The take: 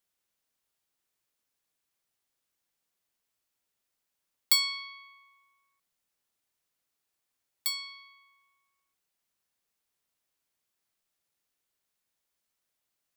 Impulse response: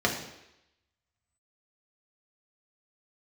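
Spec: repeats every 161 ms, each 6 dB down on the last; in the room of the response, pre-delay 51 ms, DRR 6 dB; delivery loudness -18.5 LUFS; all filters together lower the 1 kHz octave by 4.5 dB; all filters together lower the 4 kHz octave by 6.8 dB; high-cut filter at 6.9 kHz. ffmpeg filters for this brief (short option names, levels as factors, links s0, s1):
-filter_complex "[0:a]lowpass=6900,equalizer=f=1000:t=o:g=-4.5,equalizer=f=4000:t=o:g=-7,aecho=1:1:161|322|483|644|805|966:0.501|0.251|0.125|0.0626|0.0313|0.0157,asplit=2[s0][s1];[1:a]atrim=start_sample=2205,adelay=51[s2];[s1][s2]afir=irnorm=-1:irlink=0,volume=0.119[s3];[s0][s3]amix=inputs=2:normalize=0,volume=8.41"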